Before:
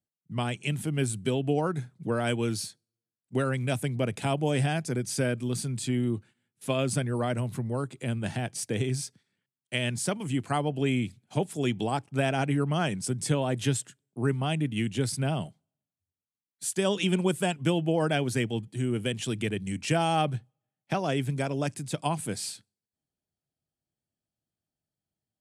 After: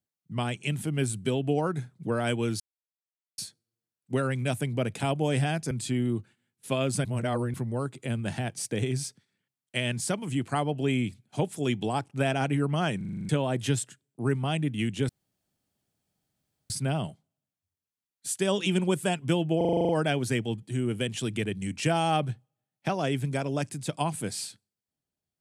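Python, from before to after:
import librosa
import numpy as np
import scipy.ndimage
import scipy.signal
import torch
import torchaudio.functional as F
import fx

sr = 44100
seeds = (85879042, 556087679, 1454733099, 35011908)

y = fx.edit(x, sr, fx.insert_silence(at_s=2.6, length_s=0.78),
    fx.cut(start_s=4.93, length_s=0.76),
    fx.reverse_span(start_s=7.03, length_s=0.49),
    fx.stutter_over(start_s=12.95, slice_s=0.04, count=8),
    fx.insert_room_tone(at_s=15.07, length_s=1.61),
    fx.stutter(start_s=17.94, slice_s=0.04, count=9), tone=tone)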